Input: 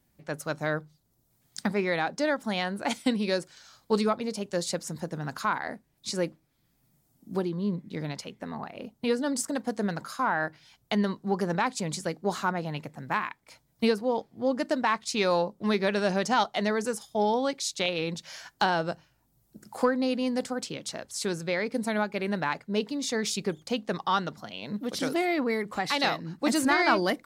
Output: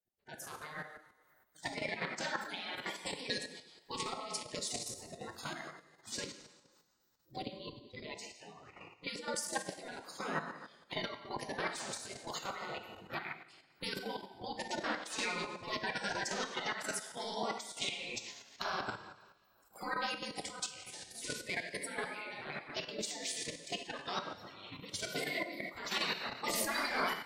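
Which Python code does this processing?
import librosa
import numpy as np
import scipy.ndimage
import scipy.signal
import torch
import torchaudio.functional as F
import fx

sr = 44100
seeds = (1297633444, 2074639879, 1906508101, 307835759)

y = fx.spec_quant(x, sr, step_db=30)
y = fx.noise_reduce_blind(y, sr, reduce_db=17)
y = fx.rev_double_slope(y, sr, seeds[0], early_s=0.88, late_s=2.6, knee_db=-20, drr_db=4.0)
y = fx.level_steps(y, sr, step_db=9)
y = fx.spec_gate(y, sr, threshold_db=-10, keep='weak')
y = F.gain(torch.from_numpy(y), 2.0).numpy()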